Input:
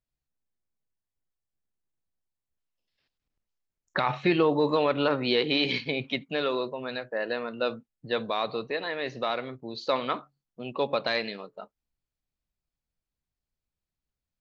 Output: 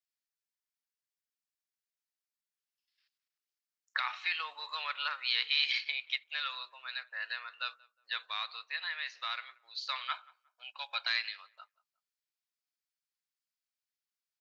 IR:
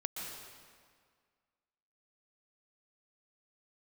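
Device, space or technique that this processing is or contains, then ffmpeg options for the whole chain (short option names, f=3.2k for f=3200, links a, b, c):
headphones lying on a table: -filter_complex "[0:a]asettb=1/sr,asplit=3[a][b][c];[a]atrim=end=10.114[d];[b]atrim=start=10.11:end=11.07,asetpts=PTS-STARTPTS,afade=t=in:d=0.004:c=qsin,afade=t=out:st=0.956:d=0.004:c=qsin,aecho=1:1:1.3:0.8,atrim=end_sample=42336[e];[c]atrim=start=11.066[f];[d][e]acrossfade=d=0.004:c1=hsin:c2=qsin[g];[g][f]acrossfade=d=0.004:c1=qsin:c2=hsin,highpass=f=1.3k:w=0.5412,highpass=f=1.3k:w=1.3066,equalizer=f=5k:t=o:w=0.43:g=4,asplit=2[h][i];[i]adelay=180,lowpass=f=1.5k:p=1,volume=-22dB,asplit=2[j][k];[k]adelay=180,lowpass=f=1.5k:p=1,volume=0.34[l];[h][j][l]amix=inputs=3:normalize=0,volume=-2dB"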